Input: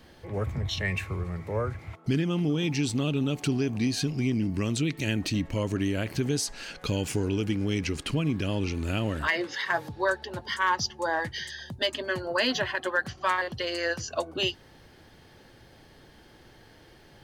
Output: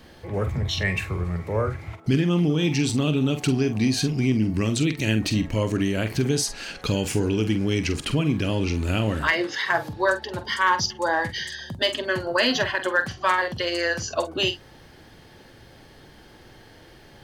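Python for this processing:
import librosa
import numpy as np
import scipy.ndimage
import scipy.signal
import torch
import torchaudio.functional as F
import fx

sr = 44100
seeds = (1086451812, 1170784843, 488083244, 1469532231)

y = fx.doubler(x, sr, ms=46.0, db=-10.0)
y = F.gain(torch.from_numpy(y), 4.5).numpy()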